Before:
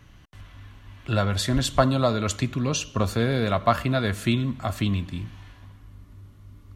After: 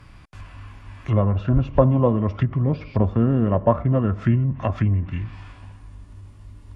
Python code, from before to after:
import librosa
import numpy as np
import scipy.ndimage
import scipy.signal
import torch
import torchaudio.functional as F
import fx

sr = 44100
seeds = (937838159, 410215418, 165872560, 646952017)

y = fx.formant_shift(x, sr, semitones=-4)
y = fx.env_lowpass_down(y, sr, base_hz=790.0, full_db=-22.0)
y = F.gain(torch.from_numpy(y), 5.0).numpy()